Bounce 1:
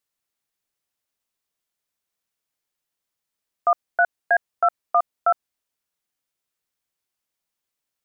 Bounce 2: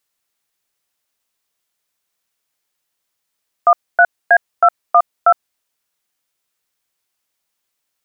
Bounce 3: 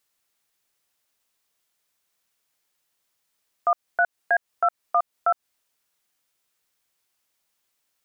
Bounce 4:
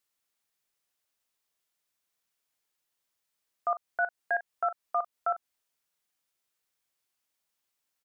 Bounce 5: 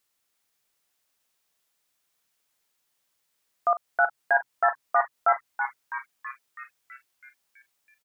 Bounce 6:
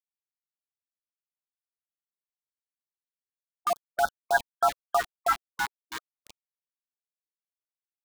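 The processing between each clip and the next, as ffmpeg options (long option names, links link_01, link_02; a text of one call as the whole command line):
ffmpeg -i in.wav -af "lowshelf=frequency=450:gain=-5,volume=8.5dB" out.wav
ffmpeg -i in.wav -af "alimiter=limit=-12.5dB:level=0:latency=1:release=162" out.wav
ffmpeg -i in.wav -filter_complex "[0:a]asplit=2[link_01][link_02];[link_02]adelay=40,volume=-13dB[link_03];[link_01][link_03]amix=inputs=2:normalize=0,volume=-7.5dB" out.wav
ffmpeg -i in.wav -filter_complex "[0:a]asplit=9[link_01][link_02][link_03][link_04][link_05][link_06][link_07][link_08][link_09];[link_02]adelay=327,afreqshift=130,volume=-7.5dB[link_10];[link_03]adelay=654,afreqshift=260,volume=-12.1dB[link_11];[link_04]adelay=981,afreqshift=390,volume=-16.7dB[link_12];[link_05]adelay=1308,afreqshift=520,volume=-21.2dB[link_13];[link_06]adelay=1635,afreqshift=650,volume=-25.8dB[link_14];[link_07]adelay=1962,afreqshift=780,volume=-30.4dB[link_15];[link_08]adelay=2289,afreqshift=910,volume=-35dB[link_16];[link_09]adelay=2616,afreqshift=1040,volume=-39.6dB[link_17];[link_01][link_10][link_11][link_12][link_13][link_14][link_15][link_16][link_17]amix=inputs=9:normalize=0,volume=6dB" out.wav
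ffmpeg -i in.wav -af "aeval=exprs='val(0)*gte(abs(val(0)),0.0447)':channel_layout=same,afftfilt=real='re*(1-between(b*sr/1024,480*pow(2400/480,0.5+0.5*sin(2*PI*3.5*pts/sr))/1.41,480*pow(2400/480,0.5+0.5*sin(2*PI*3.5*pts/sr))*1.41))':imag='im*(1-between(b*sr/1024,480*pow(2400/480,0.5+0.5*sin(2*PI*3.5*pts/sr))/1.41,480*pow(2400/480,0.5+0.5*sin(2*PI*3.5*pts/sr))*1.41))':win_size=1024:overlap=0.75" out.wav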